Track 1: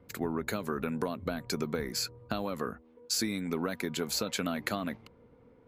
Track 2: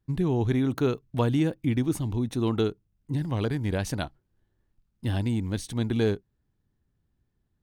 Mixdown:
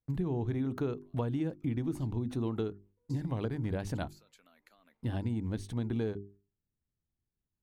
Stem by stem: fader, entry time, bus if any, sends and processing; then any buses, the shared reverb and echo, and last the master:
1.75 s -16.5 dB -> 2.15 s -6 dB, 0.00 s, no send, high-pass 720 Hz 6 dB/octave; expander -57 dBFS; compression 4:1, threshold -43 dBFS, peak gain reduction 13 dB; auto duck -12 dB, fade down 0.20 s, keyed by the second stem
-2.0 dB, 0.00 s, no send, treble shelf 2.1 kHz -10.5 dB; gate -54 dBFS, range -12 dB; hum notches 50/100/150/200/250/300/350/400 Hz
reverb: none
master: compression, threshold -29 dBFS, peak gain reduction 7.5 dB

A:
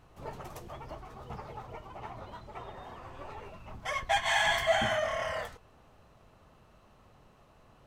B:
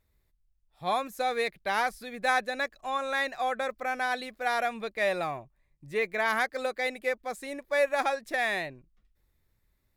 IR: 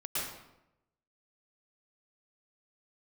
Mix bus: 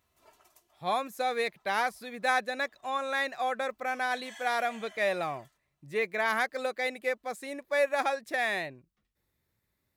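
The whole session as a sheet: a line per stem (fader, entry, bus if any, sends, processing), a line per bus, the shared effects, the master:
-18.0 dB, 0.00 s, no send, tilt EQ +4 dB/octave; comb 3 ms, depth 74%; auto duck -9 dB, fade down 0.50 s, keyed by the second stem
-1.0 dB, 0.00 s, no send, high-pass 96 Hz 12 dB/octave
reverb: none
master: none

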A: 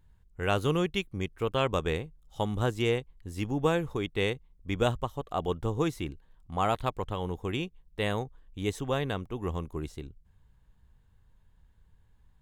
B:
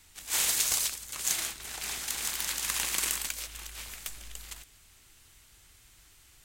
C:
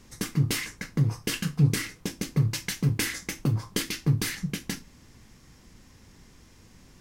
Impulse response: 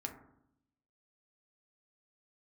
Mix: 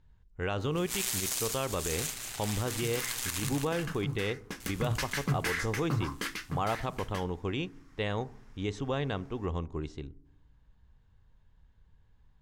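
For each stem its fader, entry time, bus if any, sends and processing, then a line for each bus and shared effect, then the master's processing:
-2.0 dB, 0.00 s, send -11.5 dB, no echo send, low-pass 6.5 kHz 24 dB/octave
0.0 dB, 0.60 s, muted 3.47–4.60 s, no send, echo send -7 dB, ring modulator 61 Hz
4.38 s -14.5 dB -> 4.83 s -5 dB -> 5.98 s -5 dB -> 6.56 s -14.5 dB, 2.45 s, no send, no echo send, peaking EQ 1.3 kHz +14.5 dB 1.8 oct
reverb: on, RT60 0.75 s, pre-delay 4 ms
echo: feedback delay 183 ms, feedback 40%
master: peak limiter -20.5 dBFS, peak gain reduction 11 dB

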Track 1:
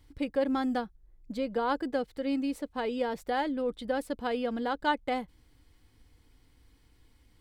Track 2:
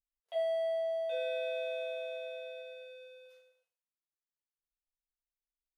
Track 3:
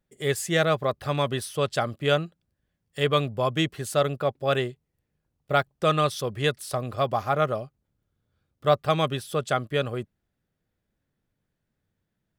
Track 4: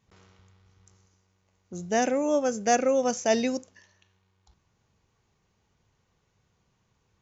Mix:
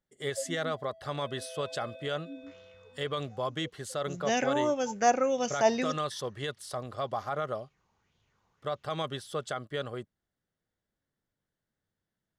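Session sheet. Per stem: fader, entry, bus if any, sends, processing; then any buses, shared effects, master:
-13.0 dB, 0.00 s, no send, spectral contrast expander 4:1
1.12 s -21 dB -> 1.54 s -8.5 dB, 0.00 s, no send, none
-4.0 dB, 0.00 s, no send, bass shelf 320 Hz -7 dB; band-stop 2.5 kHz, Q 5.5; peak limiter -18.5 dBFS, peak gain reduction 9.5 dB
-5.0 dB, 2.35 s, no send, sweeping bell 1.8 Hz 870–3500 Hz +12 dB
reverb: none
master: low-pass 9 kHz 12 dB/octave

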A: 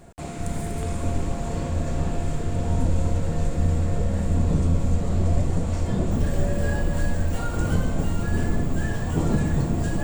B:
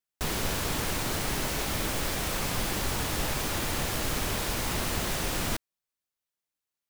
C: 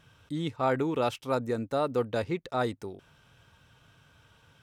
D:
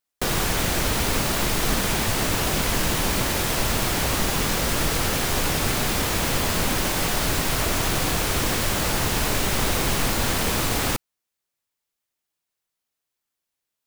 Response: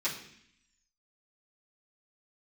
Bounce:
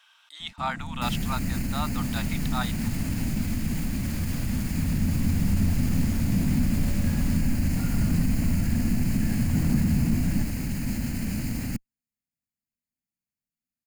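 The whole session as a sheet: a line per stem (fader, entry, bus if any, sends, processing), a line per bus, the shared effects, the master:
-7.0 dB, 0.40 s, no bus, no send, saturation -23.5 dBFS, distortion -9 dB; auto duck -8 dB, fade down 0.90 s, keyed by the third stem
-13.5 dB, 1.80 s, bus A, no send, none
+2.0 dB, 0.00 s, no bus, no send, steep high-pass 760 Hz 36 dB/octave; peaking EQ 3.4 kHz +5.5 dB 0.92 oct
-10.5 dB, 0.80 s, bus A, no send, comb filter that takes the minimum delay 0.42 ms; peaking EQ 3.6 kHz -8 dB 0.51 oct
bus A: 0.0 dB, peak limiter -27 dBFS, peak gain reduction 6 dB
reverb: none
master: resonant low shelf 310 Hz +9 dB, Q 3

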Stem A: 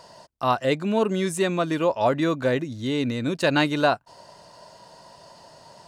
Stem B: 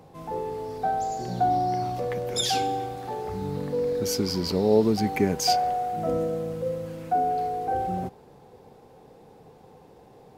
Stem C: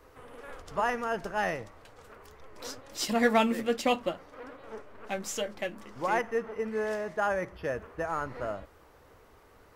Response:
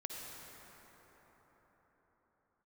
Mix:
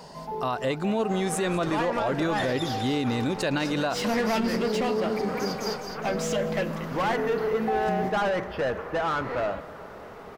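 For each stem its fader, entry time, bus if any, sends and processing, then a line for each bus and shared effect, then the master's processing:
+1.0 dB, 0.00 s, no send, echo send -19.5 dB, none
+0.5 dB, 0.00 s, no send, echo send -12.5 dB, peaking EQ 8.4 kHz -13 dB 0.45 oct; comb 4.8 ms, depth 98%; auto duck -14 dB, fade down 0.80 s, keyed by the first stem
-7.5 dB, 0.95 s, send -11.5 dB, no echo send, bass shelf 220 Hz +11 dB; overdrive pedal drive 27 dB, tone 2.4 kHz, clips at -11.5 dBFS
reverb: on, pre-delay 48 ms
echo: feedback delay 208 ms, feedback 47%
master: peak limiter -18 dBFS, peak gain reduction 11 dB

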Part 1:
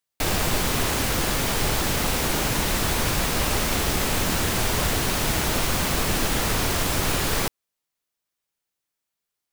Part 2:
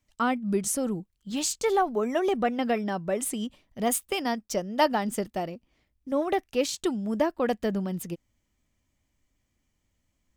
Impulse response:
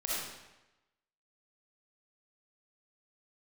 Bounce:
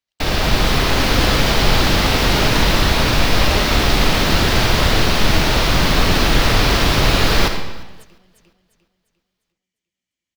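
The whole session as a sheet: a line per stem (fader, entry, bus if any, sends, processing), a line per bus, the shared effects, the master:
+1.0 dB, 0.00 s, send -7.5 dB, echo send -23.5 dB, octave divider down 2 oct, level 0 dB; resonant high shelf 6.1 kHz -9.5 dB, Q 1.5
-16.0 dB, 0.00 s, no send, echo send -3.5 dB, compression, threshold -34 dBFS, peak gain reduction 16 dB; frequency weighting D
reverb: on, RT60 1.0 s, pre-delay 20 ms
echo: feedback delay 350 ms, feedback 40%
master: level rider gain up to 7 dB; gate -38 dBFS, range -6 dB

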